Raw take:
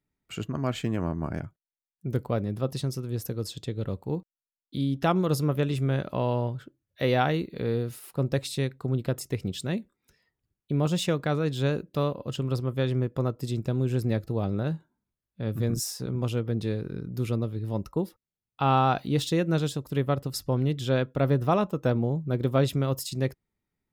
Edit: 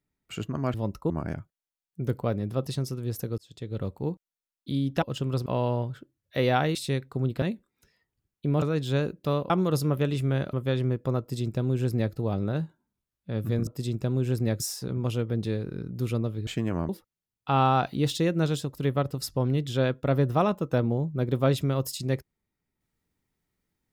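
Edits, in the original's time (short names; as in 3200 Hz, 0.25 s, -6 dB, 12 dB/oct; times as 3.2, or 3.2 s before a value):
0.74–1.16 swap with 17.65–18.01
3.44–3.87 fade in
5.08–6.11 swap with 12.2–12.64
7.4–8.44 cut
9.11–9.68 cut
10.88–11.32 cut
13.31–14.24 copy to 15.78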